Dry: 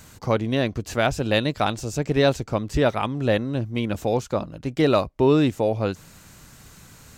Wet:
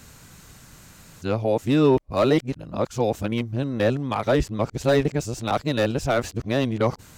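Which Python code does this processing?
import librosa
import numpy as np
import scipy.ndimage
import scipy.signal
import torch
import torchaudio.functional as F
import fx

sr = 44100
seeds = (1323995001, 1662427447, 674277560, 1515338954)

y = x[::-1].copy()
y = fx.slew_limit(y, sr, full_power_hz=180.0)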